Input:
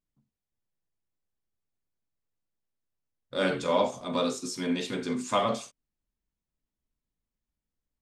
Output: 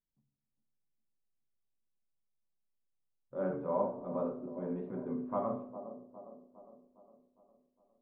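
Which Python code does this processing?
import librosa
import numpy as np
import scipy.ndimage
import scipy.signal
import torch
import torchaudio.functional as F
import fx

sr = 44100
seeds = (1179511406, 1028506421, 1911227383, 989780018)

y = scipy.signal.sosfilt(scipy.signal.butter(4, 1100.0, 'lowpass', fs=sr, output='sos'), x)
y = fx.echo_wet_bandpass(y, sr, ms=408, feedback_pct=53, hz=420.0, wet_db=-10.0)
y = fx.room_shoebox(y, sr, seeds[0], volume_m3=2000.0, walls='furnished', distance_m=1.1)
y = y * 10.0 ** (-8.0 / 20.0)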